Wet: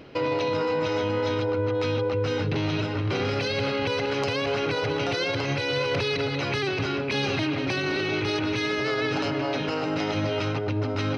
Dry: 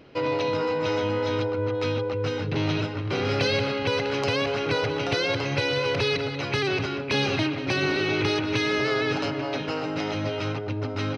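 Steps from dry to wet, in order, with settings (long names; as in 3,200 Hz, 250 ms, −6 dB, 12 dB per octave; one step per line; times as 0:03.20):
brickwall limiter −22 dBFS, peak gain reduction 10.5 dB
reversed playback
upward compression, threshold −34 dBFS
reversed playback
level +4 dB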